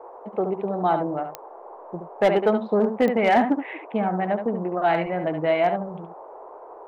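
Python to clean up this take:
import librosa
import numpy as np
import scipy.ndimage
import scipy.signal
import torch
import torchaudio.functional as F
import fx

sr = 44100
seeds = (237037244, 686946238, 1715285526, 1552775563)

y = fx.fix_declip(x, sr, threshold_db=-11.5)
y = fx.fix_declick_ar(y, sr, threshold=10.0)
y = fx.noise_reduce(y, sr, print_start_s=1.36, print_end_s=1.86, reduce_db=26.0)
y = fx.fix_echo_inverse(y, sr, delay_ms=71, level_db=-7.5)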